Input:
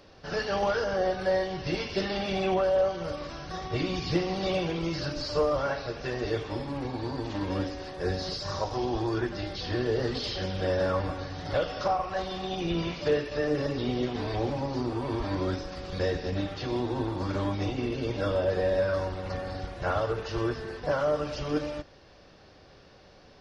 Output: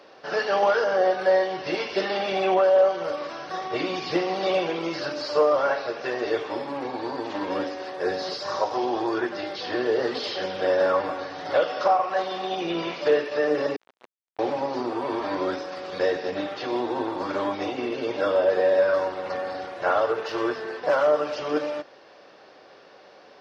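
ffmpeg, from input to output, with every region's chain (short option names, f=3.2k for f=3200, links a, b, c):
-filter_complex "[0:a]asettb=1/sr,asplit=3[a][b][c];[a]atrim=end=13.764[d];[b]atrim=start=13.76:end=14.39,asetpts=PTS-STARTPTS,afade=t=in:d=0.004:c=qsin,afade=t=out:st=0.626:d=0.004:c=qsin,lowpass=4.2k,acrusher=bits=2:mix=0:aa=0.5,aeval=exprs='(tanh(56.2*val(0)+0.75)-tanh(0.75))/56.2':c=same[e];[c]atrim=start=14.386[f];[d][e]acrossfade=d=0.004:c1=hsin:c2=qsin[g];[g][f]acrossfade=d=0.004:c1=qsin:c2=hsin,asettb=1/sr,asplit=3[h][i][j];[h]atrim=end=20.244[k];[i]atrim=start=20.24:end=21.07,asetpts=PTS-STARTPTS,afade=t=in:d=0.004:c=qsin,afade=t=out:st=0.826:d=0.004:c=qsin,aemphasis=mode=production:type=50kf,adynamicsmooth=sensitivity=4:basefreq=4.9k,asoftclip=type=hard:threshold=-21dB[l];[j]atrim=start=21.066[m];[k][l]acrossfade=d=0.004:c1=hsin:c2=qsin[n];[n][m]acrossfade=d=0.004:c1=qsin:c2=hsin,highpass=420,highshelf=f=3.6k:g=-10.5,volume=8dB"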